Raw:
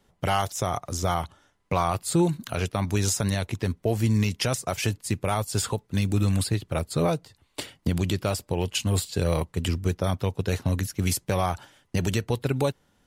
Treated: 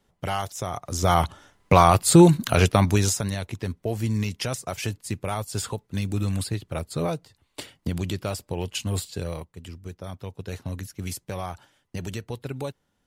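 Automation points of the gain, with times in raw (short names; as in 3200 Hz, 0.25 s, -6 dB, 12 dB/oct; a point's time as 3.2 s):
0.76 s -3.5 dB
1.24 s +9 dB
2.75 s +9 dB
3.29 s -3 dB
9.07 s -3 dB
9.62 s -14.5 dB
10.59 s -7.5 dB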